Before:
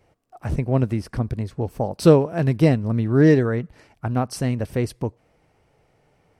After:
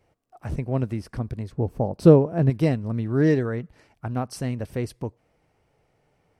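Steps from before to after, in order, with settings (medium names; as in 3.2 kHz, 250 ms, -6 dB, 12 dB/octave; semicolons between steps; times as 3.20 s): 1.52–2.50 s: tilt shelf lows +6.5 dB, about 1.1 kHz; trim -5 dB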